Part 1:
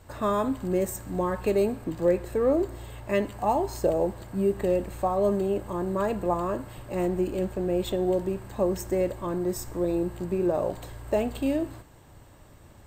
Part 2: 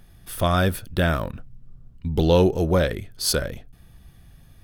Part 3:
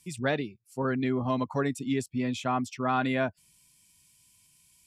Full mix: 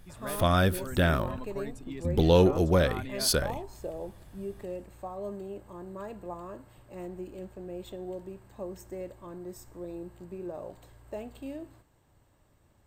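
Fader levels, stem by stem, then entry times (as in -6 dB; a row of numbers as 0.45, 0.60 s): -13.5, -3.5, -12.5 dB; 0.00, 0.00, 0.00 s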